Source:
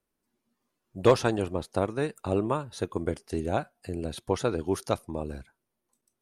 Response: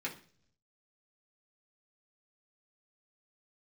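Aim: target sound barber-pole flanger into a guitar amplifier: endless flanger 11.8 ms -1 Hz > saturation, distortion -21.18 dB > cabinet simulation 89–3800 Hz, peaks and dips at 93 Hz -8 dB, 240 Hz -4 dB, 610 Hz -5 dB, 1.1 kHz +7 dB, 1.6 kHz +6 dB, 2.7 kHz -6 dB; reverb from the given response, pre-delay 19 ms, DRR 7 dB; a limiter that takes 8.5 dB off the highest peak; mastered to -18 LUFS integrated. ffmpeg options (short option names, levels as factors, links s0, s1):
-filter_complex "[0:a]alimiter=limit=0.141:level=0:latency=1,asplit=2[s0][s1];[1:a]atrim=start_sample=2205,adelay=19[s2];[s1][s2]afir=irnorm=-1:irlink=0,volume=0.335[s3];[s0][s3]amix=inputs=2:normalize=0,asplit=2[s4][s5];[s5]adelay=11.8,afreqshift=-1[s6];[s4][s6]amix=inputs=2:normalize=1,asoftclip=threshold=0.0891,highpass=89,equalizer=f=93:t=q:w=4:g=-8,equalizer=f=240:t=q:w=4:g=-4,equalizer=f=610:t=q:w=4:g=-5,equalizer=f=1100:t=q:w=4:g=7,equalizer=f=1600:t=q:w=4:g=6,equalizer=f=2700:t=q:w=4:g=-6,lowpass=f=3800:w=0.5412,lowpass=f=3800:w=1.3066,volume=7.94"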